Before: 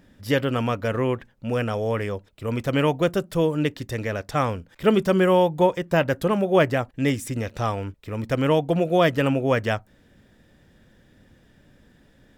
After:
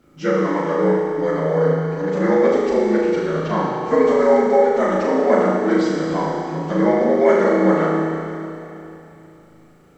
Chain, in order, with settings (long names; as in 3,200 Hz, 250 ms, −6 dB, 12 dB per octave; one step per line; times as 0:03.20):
partials spread apart or drawn together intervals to 75%
bit-depth reduction 12 bits, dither none
speed change +24%
flutter between parallel walls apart 6.4 metres, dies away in 0.59 s
four-comb reverb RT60 3 s, combs from 31 ms, DRR −0.5 dB